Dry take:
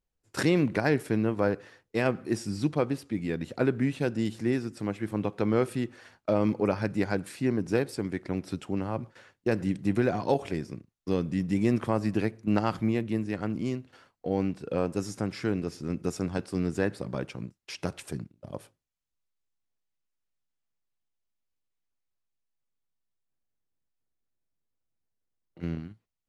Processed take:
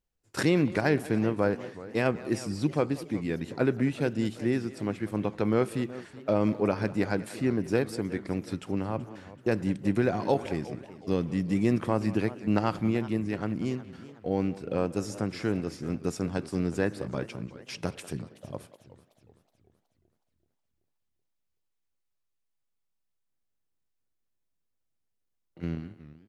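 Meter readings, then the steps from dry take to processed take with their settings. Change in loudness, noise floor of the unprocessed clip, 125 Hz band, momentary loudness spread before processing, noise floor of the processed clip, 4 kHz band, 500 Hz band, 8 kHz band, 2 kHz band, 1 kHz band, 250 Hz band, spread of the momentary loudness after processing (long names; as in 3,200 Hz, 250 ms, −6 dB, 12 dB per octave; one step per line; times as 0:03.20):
0.0 dB, −82 dBFS, 0.0 dB, 11 LU, −79 dBFS, 0.0 dB, 0.0 dB, 0.0 dB, 0.0 dB, 0.0 dB, 0.0 dB, 11 LU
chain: far-end echo of a speakerphone 190 ms, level −16 dB
feedback echo with a swinging delay time 374 ms, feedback 48%, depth 196 cents, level −17 dB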